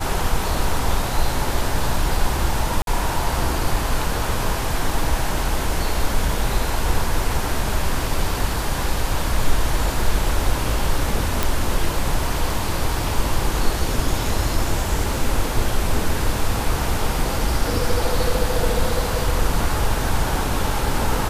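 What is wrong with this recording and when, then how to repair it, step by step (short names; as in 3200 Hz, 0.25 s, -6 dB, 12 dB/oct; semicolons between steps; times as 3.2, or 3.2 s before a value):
2.82–2.87 gap 52 ms
11.43 pop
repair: de-click; interpolate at 2.82, 52 ms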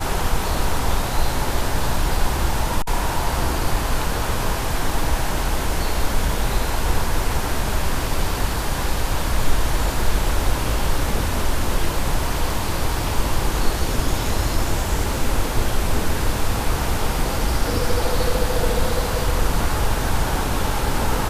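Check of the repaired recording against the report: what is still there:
none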